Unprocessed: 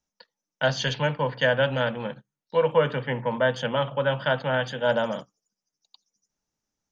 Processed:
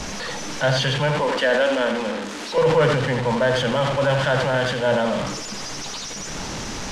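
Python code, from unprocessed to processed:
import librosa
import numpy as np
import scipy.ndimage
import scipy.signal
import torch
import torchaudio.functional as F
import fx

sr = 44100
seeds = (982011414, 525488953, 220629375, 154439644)

y = fx.delta_mod(x, sr, bps=64000, step_db=-29.5)
y = fx.steep_highpass(y, sr, hz=200.0, slope=72, at=(1.2, 2.58))
y = fx.power_curve(y, sr, exponent=0.7)
y = fx.air_absorb(y, sr, metres=95.0)
y = y + 10.0 ** (-8.5 / 20.0) * np.pad(y, (int(83 * sr / 1000.0), 0))[:len(y)]
y = fx.sustainer(y, sr, db_per_s=34.0)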